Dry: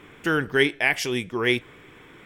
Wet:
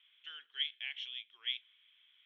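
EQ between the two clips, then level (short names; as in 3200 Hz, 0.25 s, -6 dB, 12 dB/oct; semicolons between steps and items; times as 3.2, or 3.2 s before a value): ladder band-pass 3400 Hz, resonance 80%; Butterworth band-stop 4800 Hz, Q 4.6; air absorption 290 m; -2.5 dB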